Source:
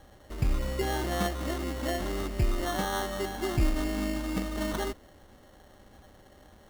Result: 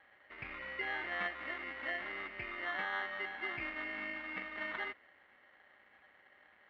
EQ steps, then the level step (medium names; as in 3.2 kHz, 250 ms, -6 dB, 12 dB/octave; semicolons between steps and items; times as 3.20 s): band-pass filter 2.1 kHz, Q 3.6; distance through air 390 m; +9.5 dB